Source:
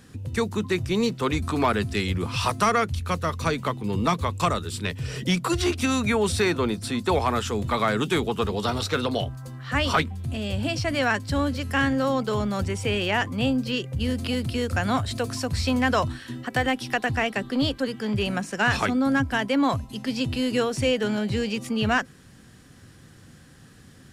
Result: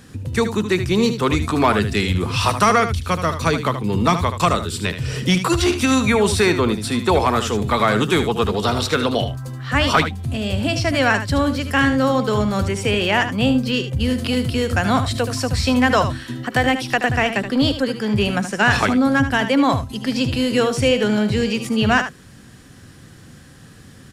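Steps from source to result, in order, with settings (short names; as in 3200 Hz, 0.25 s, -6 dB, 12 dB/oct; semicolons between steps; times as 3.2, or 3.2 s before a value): echo 76 ms -10 dB; gain +6 dB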